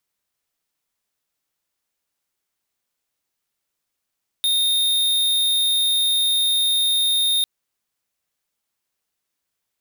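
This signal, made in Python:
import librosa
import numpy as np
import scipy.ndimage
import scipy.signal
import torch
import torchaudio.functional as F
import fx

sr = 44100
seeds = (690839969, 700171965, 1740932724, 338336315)

y = fx.tone(sr, length_s=3.0, wave='square', hz=3680.0, level_db=-19.0)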